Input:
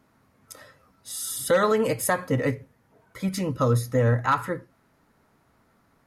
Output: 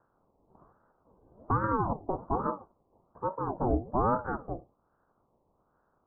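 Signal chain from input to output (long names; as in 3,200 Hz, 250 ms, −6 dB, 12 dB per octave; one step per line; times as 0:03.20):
ceiling on every frequency bin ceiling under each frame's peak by 12 dB
Butterworth low-pass 820 Hz 48 dB per octave
ring modulator whose carrier an LFO sweeps 470 Hz, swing 60%, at 1.2 Hz
level −2 dB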